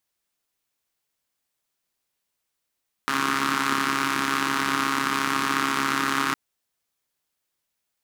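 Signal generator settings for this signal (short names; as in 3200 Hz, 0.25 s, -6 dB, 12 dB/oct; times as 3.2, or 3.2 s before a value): four-cylinder engine model, steady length 3.26 s, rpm 4100, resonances 290/1200 Hz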